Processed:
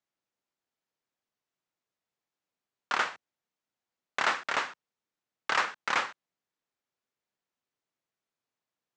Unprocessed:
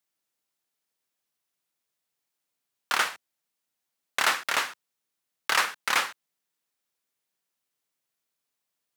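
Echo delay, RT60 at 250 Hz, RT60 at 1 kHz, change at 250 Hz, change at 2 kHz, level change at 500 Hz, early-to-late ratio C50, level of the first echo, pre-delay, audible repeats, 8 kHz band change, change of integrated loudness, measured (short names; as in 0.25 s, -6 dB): none, none, none, 0.0 dB, -3.5 dB, -0.5 dB, none, none, none, none, -11.0 dB, -4.0 dB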